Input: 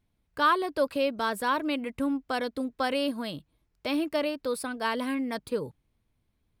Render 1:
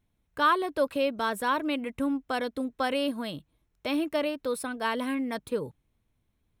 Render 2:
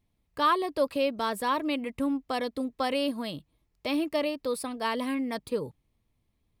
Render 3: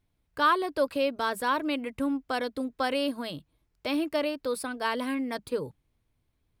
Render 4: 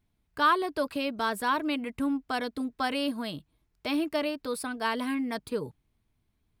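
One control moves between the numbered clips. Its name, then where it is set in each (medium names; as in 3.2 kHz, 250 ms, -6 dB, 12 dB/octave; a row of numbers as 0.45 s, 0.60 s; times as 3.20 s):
band-stop, frequency: 4.7 kHz, 1.5 kHz, 210 Hz, 530 Hz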